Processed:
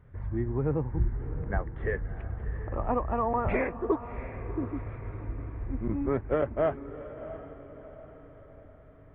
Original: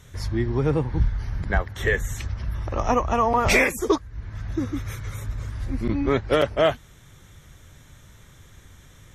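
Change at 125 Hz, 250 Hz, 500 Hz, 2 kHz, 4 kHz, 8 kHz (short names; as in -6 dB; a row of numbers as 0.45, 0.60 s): -6.0 dB, -6.0 dB, -6.5 dB, -14.0 dB, under -25 dB, under -40 dB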